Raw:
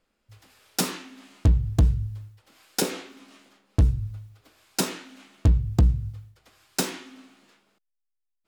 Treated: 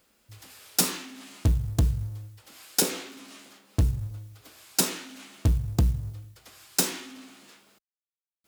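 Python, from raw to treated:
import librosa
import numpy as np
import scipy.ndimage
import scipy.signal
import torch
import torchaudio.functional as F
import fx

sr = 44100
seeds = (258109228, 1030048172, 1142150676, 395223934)

y = fx.law_mismatch(x, sr, coded='mu')
y = scipy.signal.sosfilt(scipy.signal.butter(2, 51.0, 'highpass', fs=sr, output='sos'), y)
y = fx.high_shelf(y, sr, hz=4900.0, db=9.5)
y = y * librosa.db_to_amplitude(-3.0)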